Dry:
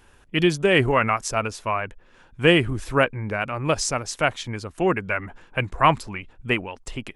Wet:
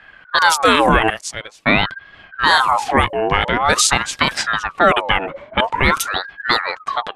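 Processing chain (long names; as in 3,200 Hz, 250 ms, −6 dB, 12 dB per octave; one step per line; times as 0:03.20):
0:01.10–0:01.66: first-order pre-emphasis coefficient 0.97
low-pass that shuts in the quiet parts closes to 1,200 Hz, open at −16.5 dBFS
high-shelf EQ 5,500 Hz +11.5 dB
boost into a limiter +13.5 dB
ring modulator whose carrier an LFO sweeps 1,100 Hz, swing 50%, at 0.47 Hz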